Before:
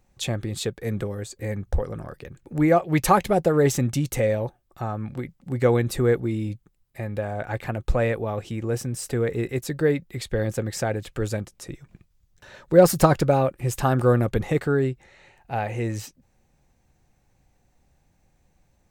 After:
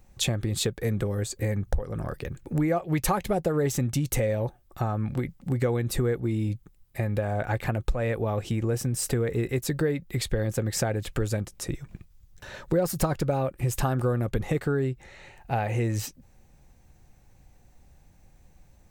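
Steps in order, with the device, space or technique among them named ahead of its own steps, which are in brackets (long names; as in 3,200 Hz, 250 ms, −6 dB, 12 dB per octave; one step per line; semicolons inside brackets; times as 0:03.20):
ASMR close-microphone chain (low-shelf EQ 100 Hz +6.5 dB; downward compressor 5 to 1, threshold −27 dBFS, peak gain reduction 17 dB; high-shelf EQ 11,000 Hz +5.5 dB)
level +4 dB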